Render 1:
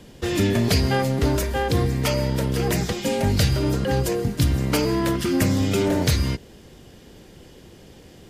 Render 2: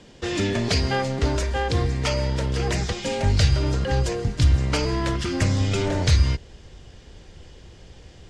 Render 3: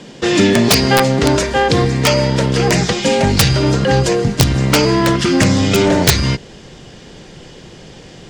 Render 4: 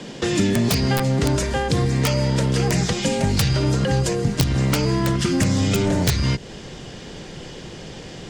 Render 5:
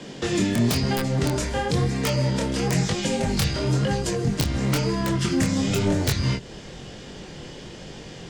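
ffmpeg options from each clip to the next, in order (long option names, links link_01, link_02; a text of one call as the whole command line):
ffmpeg -i in.wav -af "asubboost=boost=5.5:cutoff=96,lowpass=frequency=7600:width=0.5412,lowpass=frequency=7600:width=1.3066,lowshelf=frequency=320:gain=-5.5" out.wav
ffmpeg -i in.wav -af "acontrast=51,lowshelf=frequency=110:width_type=q:width=1.5:gain=-11.5,aeval=exprs='(mod(2.37*val(0)+1,2)-1)/2.37':channel_layout=same,volume=6dB" out.wav
ffmpeg -i in.wav -filter_complex "[0:a]acrossover=split=190|7800[link_01][link_02][link_03];[link_01]acompressor=threshold=-20dB:ratio=4[link_04];[link_02]acompressor=threshold=-25dB:ratio=4[link_05];[link_03]acompressor=threshold=-30dB:ratio=4[link_06];[link_04][link_05][link_06]amix=inputs=3:normalize=0,volume=1dB" out.wav
ffmpeg -i in.wav -af "flanger=delay=19.5:depth=7.5:speed=1" out.wav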